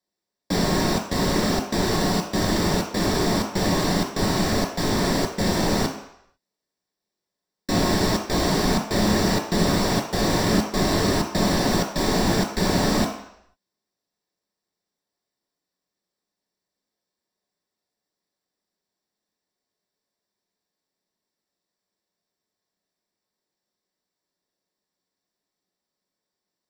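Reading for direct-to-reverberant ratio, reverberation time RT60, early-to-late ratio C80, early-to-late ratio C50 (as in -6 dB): 1.5 dB, 0.75 s, 9.5 dB, 6.5 dB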